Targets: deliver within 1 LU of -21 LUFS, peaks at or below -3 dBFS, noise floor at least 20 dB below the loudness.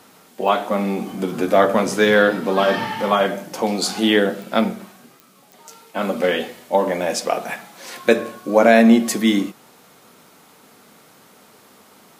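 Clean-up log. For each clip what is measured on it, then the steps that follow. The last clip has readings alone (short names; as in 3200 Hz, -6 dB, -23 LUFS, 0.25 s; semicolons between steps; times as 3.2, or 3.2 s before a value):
clicks 4; loudness -18.5 LUFS; peak -1.0 dBFS; loudness target -21.0 LUFS
-> de-click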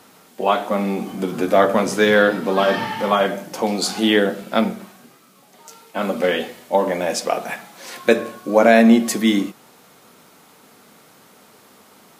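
clicks 0; loudness -18.5 LUFS; peak -1.0 dBFS; loudness target -21.0 LUFS
-> gain -2.5 dB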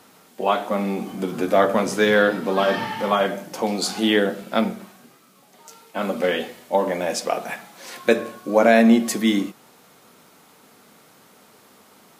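loudness -21.0 LUFS; peak -3.5 dBFS; noise floor -53 dBFS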